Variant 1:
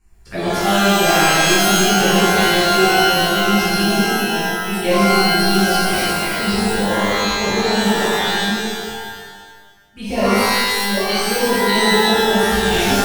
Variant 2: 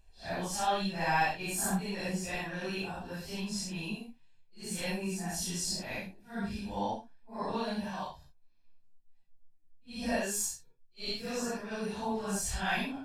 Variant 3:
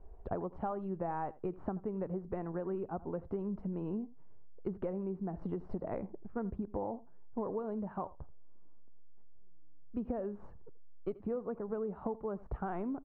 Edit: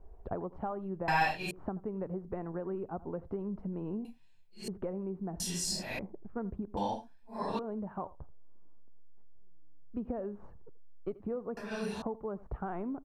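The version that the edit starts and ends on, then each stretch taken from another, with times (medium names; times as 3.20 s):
3
1.08–1.51 s: from 2
4.05–4.68 s: from 2
5.40–5.99 s: from 2
6.77–7.59 s: from 2
11.57–12.02 s: from 2
not used: 1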